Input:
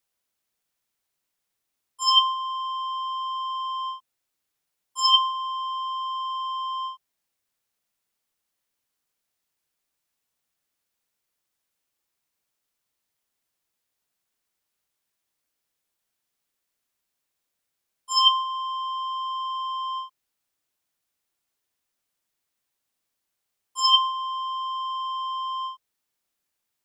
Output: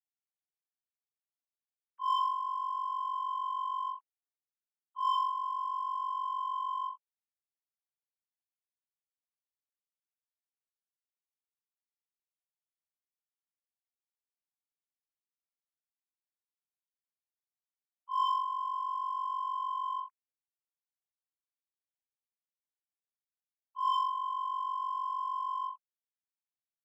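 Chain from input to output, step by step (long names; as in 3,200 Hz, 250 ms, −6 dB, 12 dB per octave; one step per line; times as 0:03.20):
three sine waves on the formant tracks
low-pass filter 1,300 Hz 12 dB per octave
in parallel at −5.5 dB: gain into a clipping stage and back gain 28 dB
on the sum: level −8 dB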